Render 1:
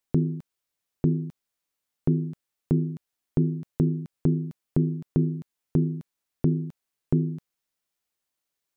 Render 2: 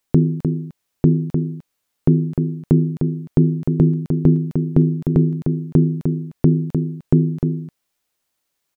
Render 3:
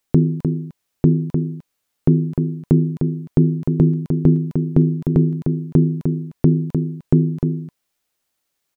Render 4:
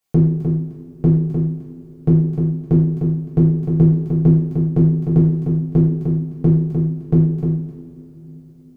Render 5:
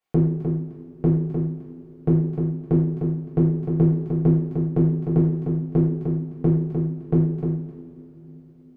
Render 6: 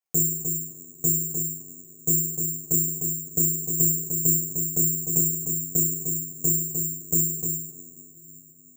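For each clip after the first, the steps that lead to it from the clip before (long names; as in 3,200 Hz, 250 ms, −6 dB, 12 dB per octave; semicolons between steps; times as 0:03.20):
slap from a distant wall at 52 metres, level −6 dB; level +8.5 dB
notch filter 1,000 Hz, Q 28
coupled-rooms reverb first 0.6 s, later 4.5 s, from −21 dB, DRR −7.5 dB; level −8 dB
bass and treble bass −7 dB, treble −14 dB
bad sample-rate conversion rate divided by 6×, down filtered, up zero stuff; level −11.5 dB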